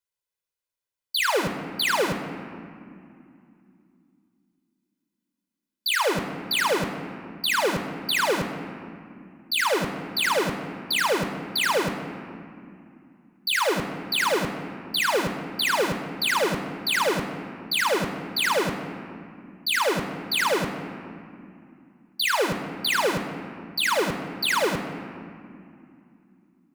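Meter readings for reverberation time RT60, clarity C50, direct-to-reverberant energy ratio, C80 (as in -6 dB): 2.5 s, 8.0 dB, 7.0 dB, 9.0 dB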